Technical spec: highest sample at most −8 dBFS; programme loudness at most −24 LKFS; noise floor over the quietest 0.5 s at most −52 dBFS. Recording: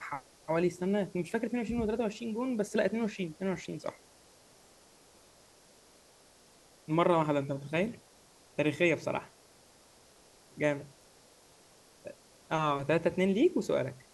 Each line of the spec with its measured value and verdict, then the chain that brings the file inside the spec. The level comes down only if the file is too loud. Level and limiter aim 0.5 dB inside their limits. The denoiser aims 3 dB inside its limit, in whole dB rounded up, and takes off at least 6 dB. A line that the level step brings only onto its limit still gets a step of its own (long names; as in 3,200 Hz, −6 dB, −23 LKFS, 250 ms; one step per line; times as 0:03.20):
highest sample −12.5 dBFS: in spec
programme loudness −32.0 LKFS: in spec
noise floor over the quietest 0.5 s −61 dBFS: in spec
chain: no processing needed